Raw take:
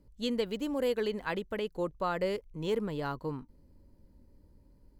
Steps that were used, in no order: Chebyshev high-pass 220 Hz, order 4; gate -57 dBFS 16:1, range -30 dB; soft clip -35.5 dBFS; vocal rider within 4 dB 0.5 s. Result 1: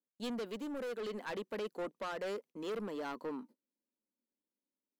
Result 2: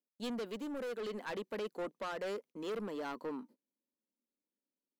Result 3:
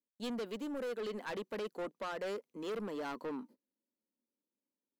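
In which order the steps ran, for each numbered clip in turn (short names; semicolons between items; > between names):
Chebyshev high-pass > soft clip > gate > vocal rider; Chebyshev high-pass > soft clip > vocal rider > gate; Chebyshev high-pass > gate > vocal rider > soft clip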